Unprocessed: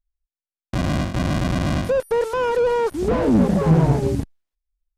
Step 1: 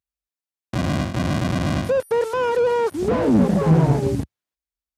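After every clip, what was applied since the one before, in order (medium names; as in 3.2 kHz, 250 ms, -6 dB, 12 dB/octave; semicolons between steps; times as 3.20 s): high-pass 72 Hz 24 dB/octave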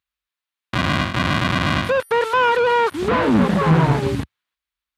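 high-order bell 2 kHz +10.5 dB 2.4 oct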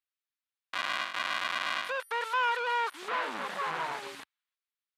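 high-pass 900 Hz 12 dB/octave; trim -9 dB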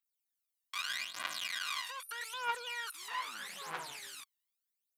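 pre-emphasis filter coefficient 0.9; phaser 0.8 Hz, delay 1.1 ms, feedback 76%; trim +1 dB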